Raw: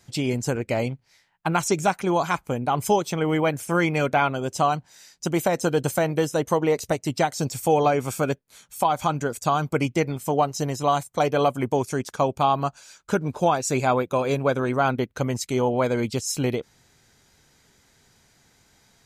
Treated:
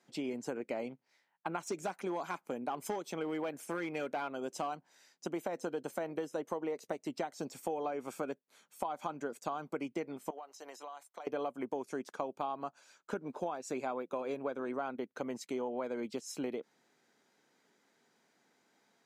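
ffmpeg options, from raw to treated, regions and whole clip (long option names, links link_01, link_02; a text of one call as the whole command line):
ffmpeg -i in.wav -filter_complex "[0:a]asettb=1/sr,asplit=3[link_01][link_02][link_03];[link_01]atrim=end=1.674[link_04];[link_02]atrim=start=1.67:end=4.75,asetpts=PTS-STARTPTS,afade=type=in:duration=0.004:curve=qsin,afade=type=out:start_time=3.076:duration=0.004:curve=qsin,highshelf=frequency=4100:gain=6,volume=16dB,asoftclip=hard,volume=-16dB[link_05];[link_03]atrim=start=4.746[link_06];[link_04][link_05]acrossfade=duration=0.004:curve1=hsin:curve2=qsin[link_07];[link_07][link_06]acrossfade=duration=0.004:curve1=qsin:curve2=hsin,asettb=1/sr,asplit=3[link_08][link_09][link_10];[link_08]atrim=end=10.304[link_11];[link_09]atrim=start=10.3:end=11.27,asetpts=PTS-STARTPTS,afade=type=in:duration=0.004:curve=qsin,afade=type=out:start_time=0.966:duration=0.004:curve=qsin,highpass=730,acompressor=threshold=-33dB:ratio=16:attack=3.2:release=140:knee=1:detection=peak[link_12];[link_10]atrim=start=11.266[link_13];[link_11][link_12]acrossfade=duration=0.004:curve1=hsin:curve2=qsin[link_14];[link_14][link_13]acrossfade=duration=0.004:curve1=qsin:curve2=hsin,highpass=frequency=220:width=0.5412,highpass=frequency=220:width=1.3066,highshelf=frequency=3000:gain=-11.5,acompressor=threshold=-26dB:ratio=6,volume=-7.5dB" out.wav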